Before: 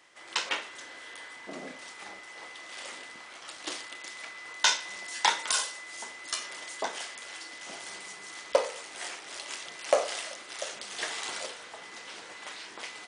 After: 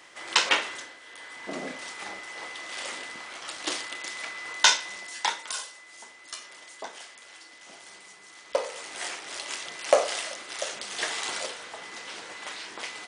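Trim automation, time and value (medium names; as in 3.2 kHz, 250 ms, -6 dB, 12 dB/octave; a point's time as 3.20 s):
0.72 s +8.5 dB
0.99 s -4 dB
1.50 s +6 dB
4.59 s +6 dB
5.52 s -6 dB
8.40 s -6 dB
8.87 s +4 dB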